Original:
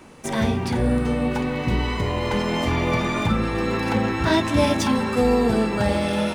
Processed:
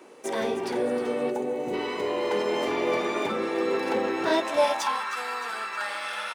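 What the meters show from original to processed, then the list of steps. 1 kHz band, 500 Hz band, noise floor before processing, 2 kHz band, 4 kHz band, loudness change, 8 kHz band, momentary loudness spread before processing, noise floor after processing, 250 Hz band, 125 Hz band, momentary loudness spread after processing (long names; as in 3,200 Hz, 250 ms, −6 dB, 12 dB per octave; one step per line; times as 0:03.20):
−3.0 dB, −2.0 dB, −28 dBFS, −4.0 dB, −5.0 dB, −5.5 dB, −5.0 dB, 4 LU, −35 dBFS, −10.5 dB, −24.0 dB, 6 LU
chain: echo with shifted repeats 311 ms, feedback 59%, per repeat −99 Hz, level −12.5 dB
high-pass filter sweep 400 Hz → 1,300 Hz, 0:04.24–0:05.12
gain on a spectral selection 0:01.31–0:01.73, 910–5,900 Hz −10 dB
level −5.5 dB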